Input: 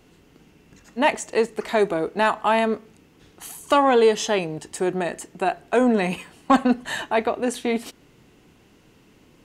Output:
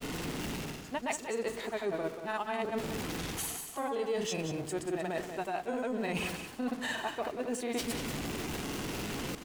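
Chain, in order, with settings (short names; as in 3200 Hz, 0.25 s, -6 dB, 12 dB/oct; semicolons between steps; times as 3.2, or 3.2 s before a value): zero-crossing step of -33.5 dBFS; grains 0.1 s, pitch spread up and down by 0 st; reverse; compressor 6:1, threshold -36 dBFS, peak gain reduction 20.5 dB; reverse; echo 0.185 s -9 dB; gain +2.5 dB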